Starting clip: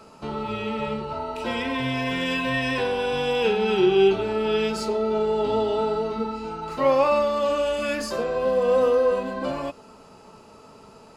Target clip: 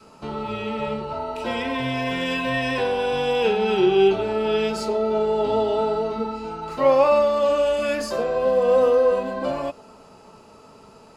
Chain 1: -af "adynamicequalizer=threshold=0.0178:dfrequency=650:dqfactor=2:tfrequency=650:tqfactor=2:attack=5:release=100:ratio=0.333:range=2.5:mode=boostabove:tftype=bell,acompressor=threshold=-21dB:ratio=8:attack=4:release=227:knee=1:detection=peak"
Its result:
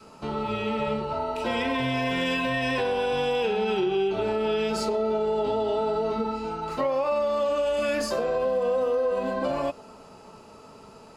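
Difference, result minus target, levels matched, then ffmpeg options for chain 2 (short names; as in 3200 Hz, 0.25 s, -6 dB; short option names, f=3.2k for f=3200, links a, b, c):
compressor: peak gain reduction +11 dB
-af "adynamicequalizer=threshold=0.0178:dfrequency=650:dqfactor=2:tfrequency=650:tqfactor=2:attack=5:release=100:ratio=0.333:range=2.5:mode=boostabove:tftype=bell"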